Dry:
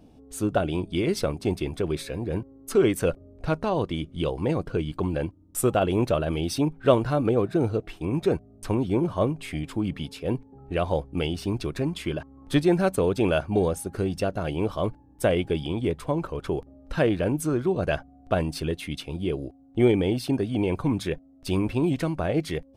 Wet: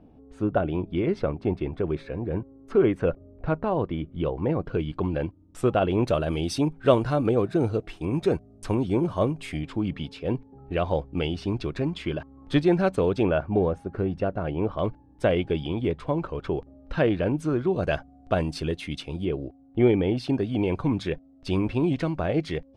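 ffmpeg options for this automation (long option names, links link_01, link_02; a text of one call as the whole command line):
ffmpeg -i in.wav -af "asetnsamples=nb_out_samples=441:pad=0,asendcmd='4.65 lowpass f 3600;6.07 lowpass f 9200;9.57 lowpass f 4500;13.23 lowpass f 1900;14.79 lowpass f 4000;17.73 lowpass f 7100;19.25 lowpass f 2800;20.17 lowpass f 4900',lowpass=1900" out.wav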